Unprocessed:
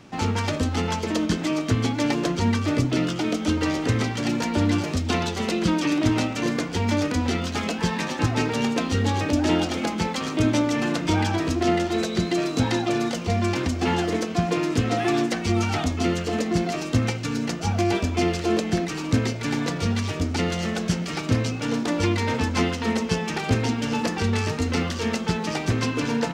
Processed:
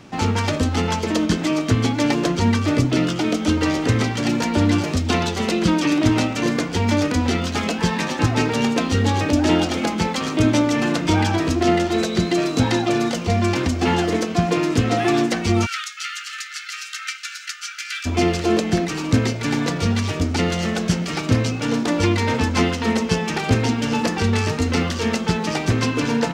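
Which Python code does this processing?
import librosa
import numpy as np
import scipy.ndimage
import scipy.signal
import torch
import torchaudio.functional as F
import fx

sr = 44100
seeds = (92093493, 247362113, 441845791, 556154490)

y = fx.brickwall_highpass(x, sr, low_hz=1200.0, at=(15.65, 18.05), fade=0.02)
y = y * 10.0 ** (4.0 / 20.0)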